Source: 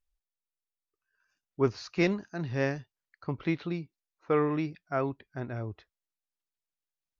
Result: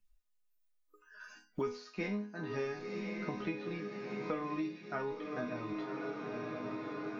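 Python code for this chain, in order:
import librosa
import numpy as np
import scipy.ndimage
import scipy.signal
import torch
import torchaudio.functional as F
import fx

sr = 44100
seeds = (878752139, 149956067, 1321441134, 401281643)

p1 = fx.resonator_bank(x, sr, root=56, chord='minor', decay_s=0.35)
p2 = p1 + fx.echo_diffused(p1, sr, ms=1022, feedback_pct=52, wet_db=-10.5, dry=0)
p3 = fx.noise_reduce_blind(p2, sr, reduce_db=21)
p4 = fx.band_squash(p3, sr, depth_pct=100)
y = F.gain(torch.from_numpy(p4), 11.5).numpy()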